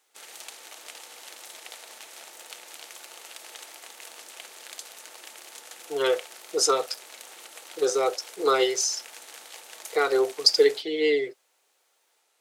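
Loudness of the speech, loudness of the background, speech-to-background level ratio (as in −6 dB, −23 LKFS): −24.5 LKFS, −42.5 LKFS, 18.0 dB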